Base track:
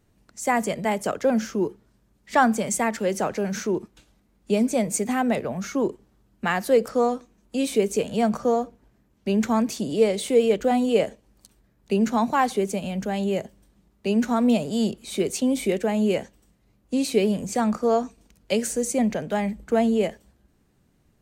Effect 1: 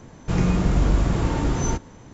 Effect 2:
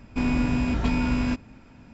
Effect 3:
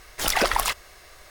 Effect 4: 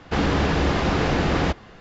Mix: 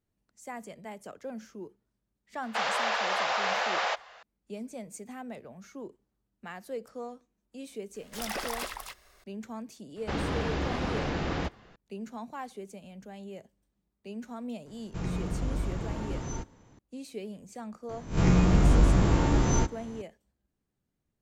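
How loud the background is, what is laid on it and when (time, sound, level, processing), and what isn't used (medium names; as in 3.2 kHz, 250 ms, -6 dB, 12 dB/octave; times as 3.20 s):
base track -18.5 dB
2.43 s: add 4 -2 dB + steep high-pass 580 Hz
7.94 s: add 3 -14.5 dB + loudspeakers at several distances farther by 26 m -4 dB, 91 m -4 dB
9.96 s: add 4 -10 dB
14.66 s: add 1 -12.5 dB
17.89 s: add 1 -2.5 dB + reverse spectral sustain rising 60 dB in 0.33 s
not used: 2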